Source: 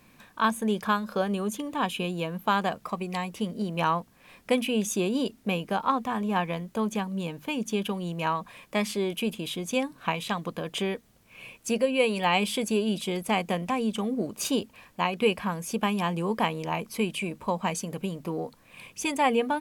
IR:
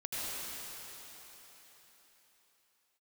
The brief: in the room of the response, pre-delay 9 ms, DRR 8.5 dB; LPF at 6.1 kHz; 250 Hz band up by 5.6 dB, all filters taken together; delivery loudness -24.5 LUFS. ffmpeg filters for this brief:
-filter_complex "[0:a]lowpass=6100,equalizer=f=250:t=o:g=7,asplit=2[s0][s1];[1:a]atrim=start_sample=2205,adelay=9[s2];[s1][s2]afir=irnorm=-1:irlink=0,volume=0.211[s3];[s0][s3]amix=inputs=2:normalize=0,volume=1.12"

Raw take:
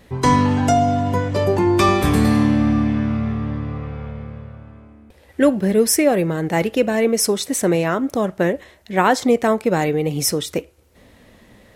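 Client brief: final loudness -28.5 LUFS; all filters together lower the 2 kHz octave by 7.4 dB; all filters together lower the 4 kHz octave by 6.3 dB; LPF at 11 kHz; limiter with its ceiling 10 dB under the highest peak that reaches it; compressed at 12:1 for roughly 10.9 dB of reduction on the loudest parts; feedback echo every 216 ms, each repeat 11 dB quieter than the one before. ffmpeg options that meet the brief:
-af "lowpass=11000,equalizer=f=2000:t=o:g=-8,equalizer=f=4000:t=o:g=-7,acompressor=threshold=0.0794:ratio=12,alimiter=limit=0.0944:level=0:latency=1,aecho=1:1:216|432|648:0.282|0.0789|0.0221,volume=1.12"

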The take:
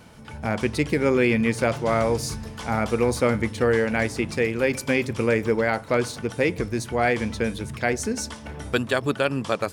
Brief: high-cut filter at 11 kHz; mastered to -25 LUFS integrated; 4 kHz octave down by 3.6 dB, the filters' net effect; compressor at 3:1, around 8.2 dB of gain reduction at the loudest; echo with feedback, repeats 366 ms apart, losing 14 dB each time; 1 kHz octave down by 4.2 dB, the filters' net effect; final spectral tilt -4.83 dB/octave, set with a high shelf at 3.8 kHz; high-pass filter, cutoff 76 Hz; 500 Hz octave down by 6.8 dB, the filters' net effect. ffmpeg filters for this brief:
-af "highpass=76,lowpass=11000,equalizer=f=500:t=o:g=-7.5,equalizer=f=1000:t=o:g=-3,highshelf=f=3800:g=3.5,equalizer=f=4000:t=o:g=-7,acompressor=threshold=0.0282:ratio=3,aecho=1:1:366|732:0.2|0.0399,volume=2.82"

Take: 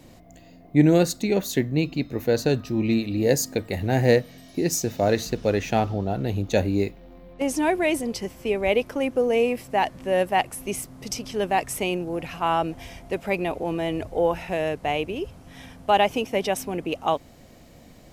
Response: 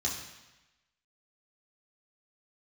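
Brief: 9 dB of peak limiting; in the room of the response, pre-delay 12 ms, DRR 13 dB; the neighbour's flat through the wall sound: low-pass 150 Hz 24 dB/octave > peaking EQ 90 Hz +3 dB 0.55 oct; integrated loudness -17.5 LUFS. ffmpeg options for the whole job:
-filter_complex "[0:a]alimiter=limit=0.224:level=0:latency=1,asplit=2[s0][s1];[1:a]atrim=start_sample=2205,adelay=12[s2];[s1][s2]afir=irnorm=-1:irlink=0,volume=0.126[s3];[s0][s3]amix=inputs=2:normalize=0,lowpass=f=150:w=0.5412,lowpass=f=150:w=1.3066,equalizer=f=90:t=o:w=0.55:g=3,volume=8.41"

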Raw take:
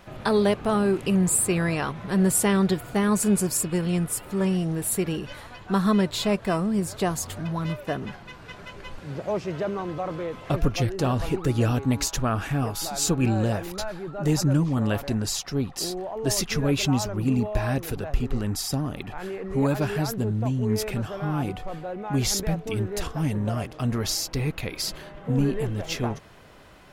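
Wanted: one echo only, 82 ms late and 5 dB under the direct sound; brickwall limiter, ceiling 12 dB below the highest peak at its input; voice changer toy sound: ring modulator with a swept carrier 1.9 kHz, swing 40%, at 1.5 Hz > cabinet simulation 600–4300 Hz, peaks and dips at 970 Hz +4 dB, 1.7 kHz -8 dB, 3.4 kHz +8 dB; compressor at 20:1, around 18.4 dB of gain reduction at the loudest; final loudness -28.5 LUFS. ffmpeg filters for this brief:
-af "acompressor=threshold=0.0178:ratio=20,alimiter=level_in=3.35:limit=0.0631:level=0:latency=1,volume=0.299,aecho=1:1:82:0.562,aeval=exprs='val(0)*sin(2*PI*1900*n/s+1900*0.4/1.5*sin(2*PI*1.5*n/s))':c=same,highpass=600,equalizer=f=970:t=q:w=4:g=4,equalizer=f=1700:t=q:w=4:g=-8,equalizer=f=3400:t=q:w=4:g=8,lowpass=f=4300:w=0.5412,lowpass=f=4300:w=1.3066,volume=5.31"

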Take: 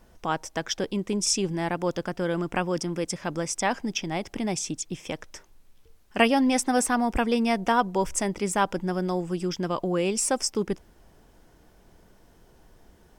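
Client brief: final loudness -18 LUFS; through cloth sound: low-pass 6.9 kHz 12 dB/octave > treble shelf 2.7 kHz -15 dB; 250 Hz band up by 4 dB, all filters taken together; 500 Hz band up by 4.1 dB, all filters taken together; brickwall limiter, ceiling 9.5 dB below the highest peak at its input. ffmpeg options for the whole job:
-af "equalizer=f=250:t=o:g=4,equalizer=f=500:t=o:g=4.5,alimiter=limit=0.2:level=0:latency=1,lowpass=6900,highshelf=f=2700:g=-15,volume=2.66"

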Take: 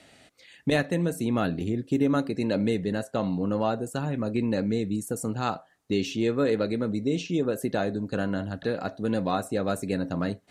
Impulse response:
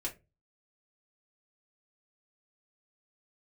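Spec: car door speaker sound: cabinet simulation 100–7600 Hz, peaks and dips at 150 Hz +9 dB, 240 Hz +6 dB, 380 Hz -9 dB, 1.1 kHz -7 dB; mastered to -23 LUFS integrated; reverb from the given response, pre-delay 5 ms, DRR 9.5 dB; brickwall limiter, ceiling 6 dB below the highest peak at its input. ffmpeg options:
-filter_complex "[0:a]alimiter=limit=0.133:level=0:latency=1,asplit=2[s0][s1];[1:a]atrim=start_sample=2205,adelay=5[s2];[s1][s2]afir=irnorm=-1:irlink=0,volume=0.299[s3];[s0][s3]amix=inputs=2:normalize=0,highpass=100,equalizer=f=150:t=q:w=4:g=9,equalizer=f=240:t=q:w=4:g=6,equalizer=f=380:t=q:w=4:g=-9,equalizer=f=1100:t=q:w=4:g=-7,lowpass=f=7600:w=0.5412,lowpass=f=7600:w=1.3066,volume=1.58"

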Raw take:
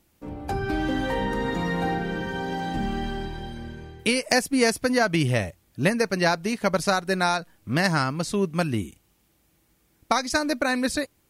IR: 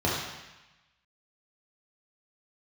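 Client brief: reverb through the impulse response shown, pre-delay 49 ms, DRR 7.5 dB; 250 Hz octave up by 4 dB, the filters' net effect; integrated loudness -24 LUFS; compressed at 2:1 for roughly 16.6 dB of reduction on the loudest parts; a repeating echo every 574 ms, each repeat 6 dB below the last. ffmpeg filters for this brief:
-filter_complex "[0:a]equalizer=f=250:t=o:g=5,acompressor=threshold=0.00447:ratio=2,aecho=1:1:574|1148|1722|2296|2870|3444:0.501|0.251|0.125|0.0626|0.0313|0.0157,asplit=2[s0][s1];[1:a]atrim=start_sample=2205,adelay=49[s2];[s1][s2]afir=irnorm=-1:irlink=0,volume=0.0944[s3];[s0][s3]amix=inputs=2:normalize=0,volume=3.98"

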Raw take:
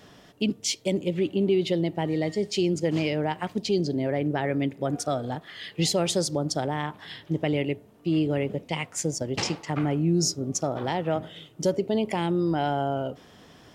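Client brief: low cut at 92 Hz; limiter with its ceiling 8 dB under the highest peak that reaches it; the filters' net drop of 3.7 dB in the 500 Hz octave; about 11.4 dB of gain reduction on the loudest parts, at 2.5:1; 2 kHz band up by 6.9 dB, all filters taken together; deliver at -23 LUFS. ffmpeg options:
-af "highpass=92,equalizer=f=500:t=o:g=-5.5,equalizer=f=2000:t=o:g=8.5,acompressor=threshold=0.0112:ratio=2.5,volume=7.08,alimiter=limit=0.237:level=0:latency=1"

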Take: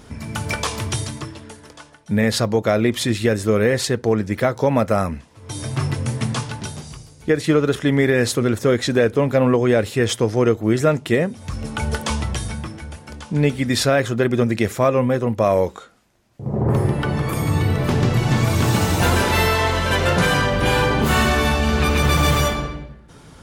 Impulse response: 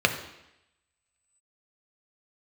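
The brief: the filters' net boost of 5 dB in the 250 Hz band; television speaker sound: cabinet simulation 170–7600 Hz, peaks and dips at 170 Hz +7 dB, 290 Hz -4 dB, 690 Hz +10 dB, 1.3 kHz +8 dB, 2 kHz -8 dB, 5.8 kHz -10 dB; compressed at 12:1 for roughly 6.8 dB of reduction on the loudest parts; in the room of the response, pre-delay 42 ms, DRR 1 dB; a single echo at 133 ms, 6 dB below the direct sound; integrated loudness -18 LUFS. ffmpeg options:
-filter_complex "[0:a]equalizer=f=250:t=o:g=7,acompressor=threshold=0.178:ratio=12,aecho=1:1:133:0.501,asplit=2[s0][s1];[1:a]atrim=start_sample=2205,adelay=42[s2];[s1][s2]afir=irnorm=-1:irlink=0,volume=0.141[s3];[s0][s3]amix=inputs=2:normalize=0,highpass=f=170:w=0.5412,highpass=f=170:w=1.3066,equalizer=f=170:t=q:w=4:g=7,equalizer=f=290:t=q:w=4:g=-4,equalizer=f=690:t=q:w=4:g=10,equalizer=f=1300:t=q:w=4:g=8,equalizer=f=2000:t=q:w=4:g=-8,equalizer=f=5800:t=q:w=4:g=-10,lowpass=f=7600:w=0.5412,lowpass=f=7600:w=1.3066"

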